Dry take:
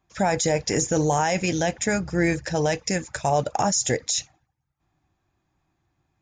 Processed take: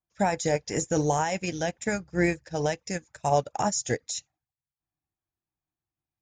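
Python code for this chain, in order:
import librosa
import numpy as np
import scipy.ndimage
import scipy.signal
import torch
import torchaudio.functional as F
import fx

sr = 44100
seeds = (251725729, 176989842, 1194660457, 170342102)

y = fx.wow_flutter(x, sr, seeds[0], rate_hz=2.1, depth_cents=45.0)
y = fx.upward_expand(y, sr, threshold_db=-33.0, expansion=2.5)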